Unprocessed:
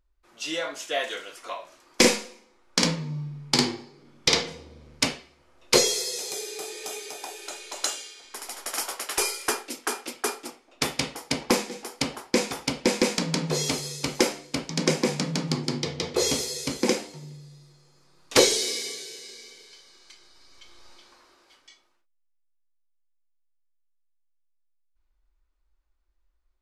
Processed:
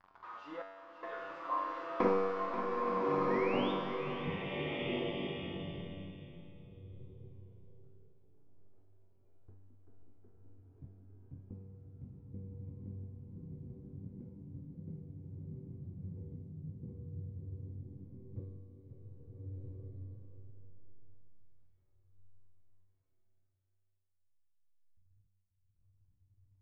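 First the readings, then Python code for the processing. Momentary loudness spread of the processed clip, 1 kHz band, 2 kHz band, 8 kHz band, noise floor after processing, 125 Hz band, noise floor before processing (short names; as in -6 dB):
22 LU, -6.0 dB, -16.0 dB, under -40 dB, -75 dBFS, -8.5 dB, -69 dBFS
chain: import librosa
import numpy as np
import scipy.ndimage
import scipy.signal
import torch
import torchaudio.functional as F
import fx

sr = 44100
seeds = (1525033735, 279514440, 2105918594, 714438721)

y = x + 0.5 * 10.0 ** (-17.0 / 20.0) * np.diff(np.sign(x), prepend=np.sign(x[:1]))
y = fx.high_shelf(y, sr, hz=5200.0, db=4.5)
y = fx.filter_sweep_lowpass(y, sr, from_hz=1100.0, to_hz=100.0, start_s=3.2, end_s=4.63, q=4.4)
y = fx.spec_paint(y, sr, seeds[0], shape='rise', start_s=3.3, length_s=0.42, low_hz=1800.0, high_hz=3700.0, level_db=-31.0)
y = fx.step_gate(y, sr, bpm=73, pattern='xxx..xxxxx', floor_db=-60.0, edge_ms=4.5)
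y = fx.air_absorb(y, sr, metres=170.0)
y = fx.comb_fb(y, sr, f0_hz=96.0, decay_s=1.5, harmonics='all', damping=0.0, mix_pct=90)
y = y + 10.0 ** (-10.5 / 20.0) * np.pad(y, (int(536 * sr / 1000.0), 0))[:len(y)]
y = fx.rev_bloom(y, sr, seeds[1], attack_ms=1410, drr_db=-3.0)
y = y * 10.0 ** (3.5 / 20.0)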